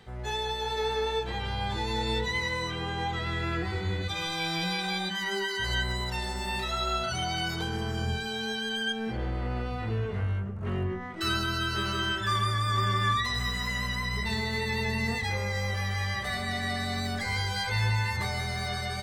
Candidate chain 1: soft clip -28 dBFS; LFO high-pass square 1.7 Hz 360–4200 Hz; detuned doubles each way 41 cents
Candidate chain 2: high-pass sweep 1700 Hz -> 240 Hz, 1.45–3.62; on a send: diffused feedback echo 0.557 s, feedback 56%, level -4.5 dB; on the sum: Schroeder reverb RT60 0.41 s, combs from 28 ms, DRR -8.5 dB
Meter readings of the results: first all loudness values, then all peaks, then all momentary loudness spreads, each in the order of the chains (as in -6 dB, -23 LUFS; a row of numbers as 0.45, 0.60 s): -36.5, -18.0 LUFS; -22.0, -3.5 dBFS; 7, 6 LU